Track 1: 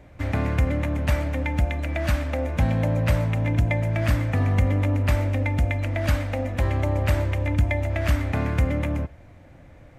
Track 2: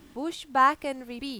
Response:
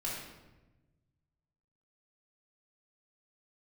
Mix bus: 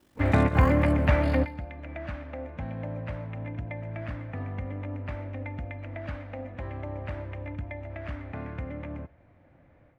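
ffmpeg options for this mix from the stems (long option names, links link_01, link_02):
-filter_complex "[0:a]lowpass=2300,dynaudnorm=framelen=110:gausssize=3:maxgain=12dB,volume=-5dB[link_01];[1:a]highshelf=frequency=5200:gain=3.5,aeval=exprs='val(0)*sin(2*PI*24*n/s)':channel_layout=same,acrusher=bits=7:mode=log:mix=0:aa=0.000001,volume=-8dB,asplit=3[link_02][link_03][link_04];[link_03]volume=-12dB[link_05];[link_04]apad=whole_len=440153[link_06];[link_01][link_06]sidechaingate=range=-15dB:threshold=-54dB:ratio=16:detection=peak[link_07];[link_05]aecho=0:1:138|276|414|552:1|0.26|0.0676|0.0176[link_08];[link_07][link_02][link_08]amix=inputs=3:normalize=0,lowshelf=frequency=69:gain=-10"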